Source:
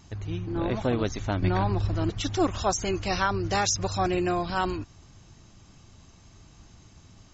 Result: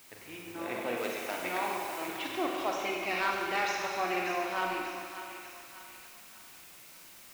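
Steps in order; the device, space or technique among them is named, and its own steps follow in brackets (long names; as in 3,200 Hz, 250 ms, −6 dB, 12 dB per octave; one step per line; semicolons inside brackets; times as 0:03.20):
drive-through speaker (band-pass filter 380–3,100 Hz; parametric band 2,300 Hz +11 dB 0.6 octaves; hard clipping −17 dBFS, distortion −19 dB; white noise bed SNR 18 dB)
0:00.97–0:02.08: bass and treble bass −8 dB, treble +7 dB
feedback echo with a high-pass in the loop 591 ms, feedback 50%, high-pass 830 Hz, level −9 dB
four-comb reverb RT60 1.9 s, combs from 33 ms, DRR −0.5 dB
level −7 dB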